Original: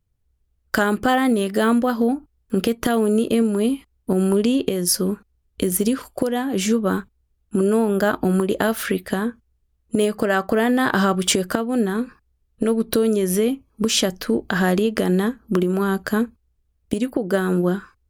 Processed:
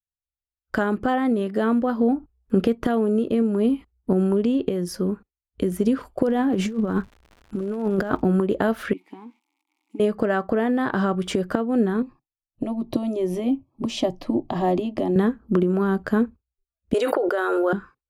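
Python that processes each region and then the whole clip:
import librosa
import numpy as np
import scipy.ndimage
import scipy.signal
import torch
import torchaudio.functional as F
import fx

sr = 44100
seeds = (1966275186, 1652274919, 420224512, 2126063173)

y = fx.low_shelf(x, sr, hz=170.0, db=2.5, at=(6.27, 8.2), fade=0.02)
y = fx.over_compress(y, sr, threshold_db=-22.0, ratio=-0.5, at=(6.27, 8.2), fade=0.02)
y = fx.dmg_crackle(y, sr, seeds[0], per_s=150.0, level_db=-31.0, at=(6.27, 8.2), fade=0.02)
y = fx.chain(y, sr, fx.crossing_spikes(level_db=-25.5),
    fx.vowel_filter(vowel='u'),
    fx.tilt_eq(slope=3.0), at=(8.93, 10.0))
y = fx.chain(y, sr, fx.high_shelf(hz=5300.0, db=-9.5),
    fx.fixed_phaser(hz=300.0, stages=8), at=(12.02, 15.16))
y = fx.chain(y, sr, fx.cheby2_highpass(hz=210.0, order=4, stop_db=40),
    fx.small_body(hz=(1400.0, 3800.0), ring_ms=95, db=12),
    fx.env_flatten(amount_pct=100), at=(16.94, 17.73))
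y = fx.rider(y, sr, range_db=4, speed_s=0.5)
y = fx.noise_reduce_blind(y, sr, reduce_db=30)
y = fx.lowpass(y, sr, hz=1200.0, slope=6)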